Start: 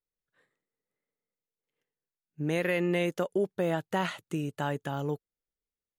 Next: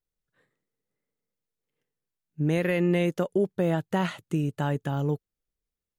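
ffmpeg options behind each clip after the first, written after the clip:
ffmpeg -i in.wav -af "lowshelf=frequency=270:gain=10" out.wav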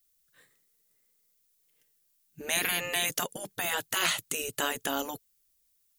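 ffmpeg -i in.wav -af "crystalizer=i=8.5:c=0,afftfilt=real='re*lt(hypot(re,im),0.2)':imag='im*lt(hypot(re,im),0.2)':win_size=1024:overlap=0.75" out.wav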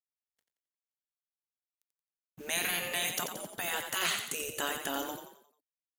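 ffmpeg -i in.wav -filter_complex "[0:a]acrusher=bits=7:mix=0:aa=0.5,asplit=6[link_01][link_02][link_03][link_04][link_05][link_06];[link_02]adelay=88,afreqshift=31,volume=-7dB[link_07];[link_03]adelay=176,afreqshift=62,volume=-14.3dB[link_08];[link_04]adelay=264,afreqshift=93,volume=-21.7dB[link_09];[link_05]adelay=352,afreqshift=124,volume=-29dB[link_10];[link_06]adelay=440,afreqshift=155,volume=-36.3dB[link_11];[link_01][link_07][link_08][link_09][link_10][link_11]amix=inputs=6:normalize=0,volume=-4dB" out.wav

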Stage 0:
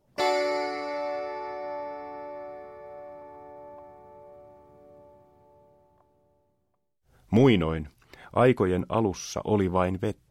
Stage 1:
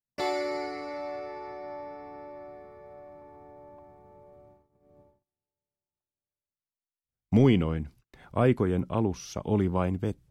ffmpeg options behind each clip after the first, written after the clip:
ffmpeg -i in.wav -filter_complex "[0:a]agate=range=-34dB:threshold=-51dB:ratio=16:detection=peak,acrossover=split=290[link_01][link_02];[link_01]acontrast=81[link_03];[link_03][link_02]amix=inputs=2:normalize=0,volume=-5.5dB" out.wav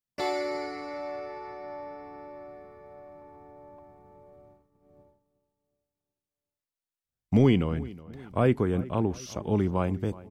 ffmpeg -i in.wav -filter_complex "[0:a]asplit=2[link_01][link_02];[link_02]adelay=368,lowpass=frequency=2900:poles=1,volume=-19dB,asplit=2[link_03][link_04];[link_04]adelay=368,lowpass=frequency=2900:poles=1,volume=0.49,asplit=2[link_05][link_06];[link_06]adelay=368,lowpass=frequency=2900:poles=1,volume=0.49,asplit=2[link_07][link_08];[link_08]adelay=368,lowpass=frequency=2900:poles=1,volume=0.49[link_09];[link_01][link_03][link_05][link_07][link_09]amix=inputs=5:normalize=0" out.wav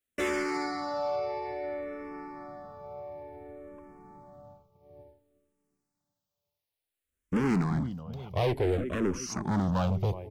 ffmpeg -i in.wav -filter_complex "[0:a]volume=29dB,asoftclip=hard,volume=-29dB,asplit=2[link_01][link_02];[link_02]afreqshift=-0.57[link_03];[link_01][link_03]amix=inputs=2:normalize=1,volume=7dB" out.wav

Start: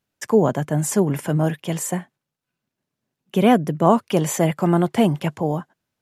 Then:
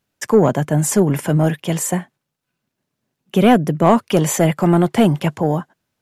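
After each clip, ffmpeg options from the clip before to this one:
ffmpeg -i in.wav -af "acontrast=52,volume=-1dB" out.wav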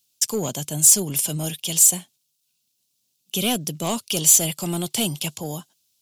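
ffmpeg -i in.wav -af "lowshelf=frequency=230:gain=3.5,aexciter=amount=8.4:drive=9.3:freq=2800,volume=-14.5dB" out.wav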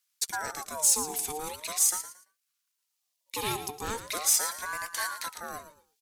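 ffmpeg -i in.wav -filter_complex "[0:a]asplit=2[link_01][link_02];[link_02]aecho=0:1:113|226|339:0.266|0.0692|0.018[link_03];[link_01][link_03]amix=inputs=2:normalize=0,aeval=exprs='val(0)*sin(2*PI*970*n/s+970*0.4/0.41*sin(2*PI*0.41*n/s))':channel_layout=same,volume=-6.5dB" out.wav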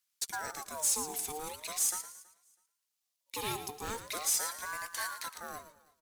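ffmpeg -i in.wav -af "acrusher=bits=3:mode=log:mix=0:aa=0.000001,asoftclip=type=tanh:threshold=-16dB,aecho=1:1:325|650:0.0631|0.0139,volume=-4.5dB" out.wav

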